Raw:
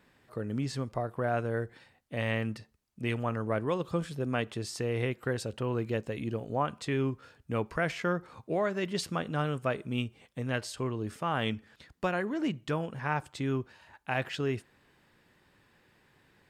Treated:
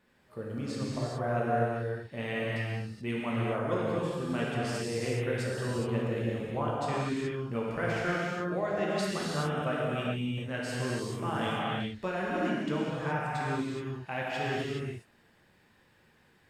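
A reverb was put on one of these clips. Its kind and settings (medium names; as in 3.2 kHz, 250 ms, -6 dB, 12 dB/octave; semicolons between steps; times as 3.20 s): gated-style reverb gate 450 ms flat, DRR -6.5 dB; trim -6.5 dB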